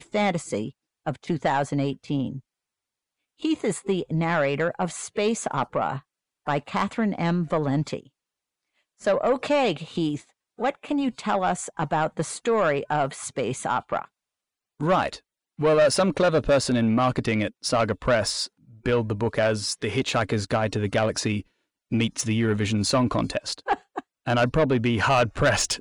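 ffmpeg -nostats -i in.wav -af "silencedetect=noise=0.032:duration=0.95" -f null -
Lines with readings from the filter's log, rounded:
silence_start: 2.37
silence_end: 3.44 | silence_duration: 1.07
silence_start: 7.99
silence_end: 9.04 | silence_duration: 1.06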